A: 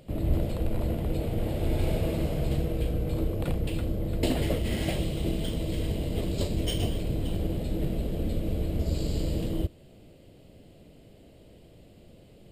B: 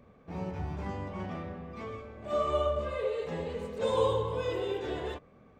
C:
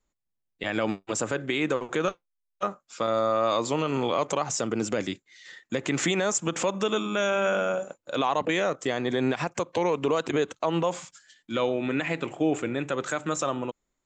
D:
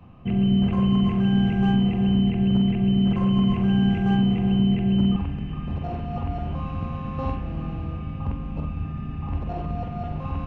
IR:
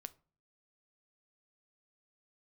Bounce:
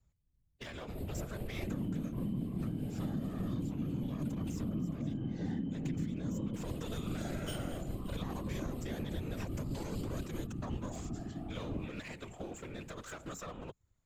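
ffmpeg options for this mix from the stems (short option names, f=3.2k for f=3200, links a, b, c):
-filter_complex "[0:a]equalizer=f=11k:w=0.91:g=7.5,tremolo=f=4.9:d=0.63,adelay=800,volume=-3.5dB,asplit=3[a][b][c];[a]atrim=end=4.99,asetpts=PTS-STARTPTS,afade=t=out:st=4.986:d=0.004:c=hsin[d];[b]atrim=start=4.99:end=6.54,asetpts=PTS-STARTPTS,volume=0[e];[c]atrim=start=6.54,asetpts=PTS-STARTPTS,afade=t=in:d=0.004:c=hsin[f];[d][e][f]concat=n=3:v=0:a=1[g];[1:a]lowshelf=f=290:t=q:w=3:g=-11.5,adelay=2350,volume=-16.5dB[h];[2:a]lowshelf=f=130:t=q:w=1.5:g=13,acrossover=split=96|5400[i][j][k];[i]acompressor=threshold=-52dB:ratio=4[l];[j]acompressor=threshold=-36dB:ratio=4[m];[k]acompressor=threshold=-47dB:ratio=4[n];[l][m][n]amix=inputs=3:normalize=0,aeval=exprs='clip(val(0),-1,0.0075)':c=same,volume=1dB[o];[3:a]tiltshelf=f=970:g=4.5,aphaser=in_gain=1:out_gain=1:delay=3.8:decay=0.26:speed=0.86:type=sinusoidal,equalizer=f=125:t=o:w=1:g=-4,equalizer=f=250:t=o:w=1:g=12,equalizer=f=500:t=o:w=1:g=-9,adelay=1400,volume=-11dB[p];[g][h][o][p]amix=inputs=4:normalize=0,afftfilt=real='hypot(re,im)*cos(2*PI*random(0))':imag='hypot(re,im)*sin(2*PI*random(1))':win_size=512:overlap=0.75,acompressor=threshold=-33dB:ratio=10"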